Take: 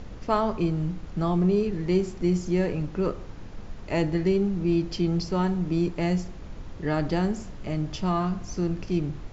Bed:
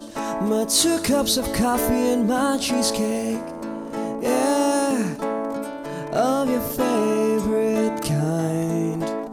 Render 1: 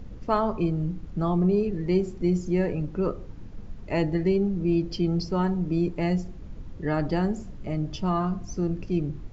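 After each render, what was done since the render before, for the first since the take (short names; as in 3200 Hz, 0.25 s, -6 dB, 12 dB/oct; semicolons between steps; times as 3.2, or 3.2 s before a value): denoiser 9 dB, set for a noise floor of -40 dBFS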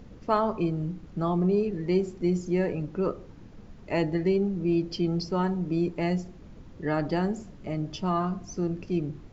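low shelf 95 Hz -12 dB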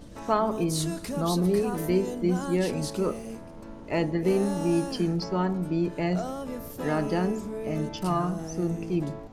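add bed -14 dB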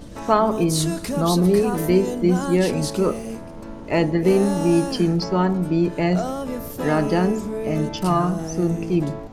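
gain +7 dB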